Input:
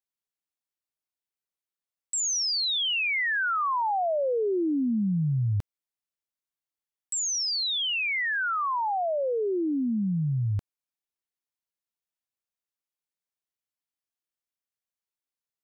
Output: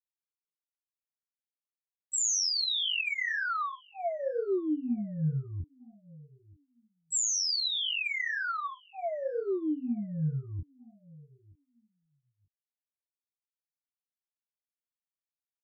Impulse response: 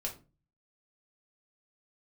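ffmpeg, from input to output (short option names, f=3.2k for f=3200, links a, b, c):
-filter_complex "[0:a]asuperstop=centerf=900:order=8:qfactor=2.4,asplit=2[a][b];[b]adelay=13,volume=-2.5dB[c];[a][c]amix=inputs=2:normalize=0,afftfilt=real='re*gte(hypot(re,im),0.0316)':imag='im*gte(hypot(re,im),0.0316)':win_size=1024:overlap=0.75,highshelf=f=5.1k:g=8.5,acompressor=mode=upward:threshold=-39dB:ratio=2.5,asplit=2[d][e];[e]adelay=927,lowpass=f=1.8k:p=1,volume=-23dB,asplit=2[f][g];[g]adelay=927,lowpass=f=1.8k:p=1,volume=0.19[h];[d][f][h]amix=inputs=3:normalize=0,flanger=delay=20:depth=6.4:speed=2,volume=-5dB"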